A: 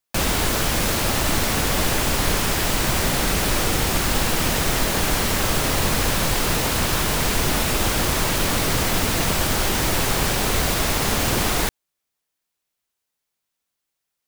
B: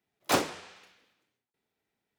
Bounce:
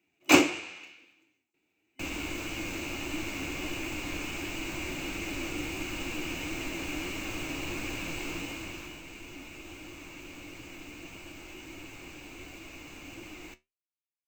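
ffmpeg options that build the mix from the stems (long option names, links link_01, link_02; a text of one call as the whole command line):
ffmpeg -i stem1.wav -i stem2.wav -filter_complex "[0:a]highshelf=frequency=6000:gain=-5.5,adelay=1850,volume=-14dB,afade=type=out:start_time=8.26:duration=0.76:silence=0.316228[link_01];[1:a]acontrast=69,volume=-0.5dB[link_02];[link_01][link_02]amix=inputs=2:normalize=0,superequalizer=6b=3.98:12b=3.98:15b=1.78:16b=0.251,flanger=delay=9:depth=4.6:regen=63:speed=1.5:shape=sinusoidal" out.wav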